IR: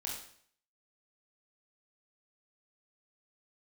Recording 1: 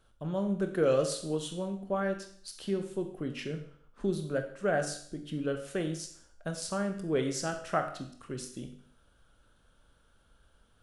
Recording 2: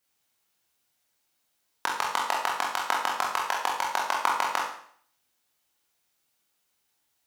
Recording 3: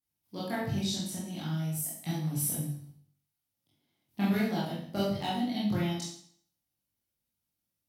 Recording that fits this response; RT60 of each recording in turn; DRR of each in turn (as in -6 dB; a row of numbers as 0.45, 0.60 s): 2; 0.60, 0.60, 0.60 s; 5.5, -3.0, -8.5 dB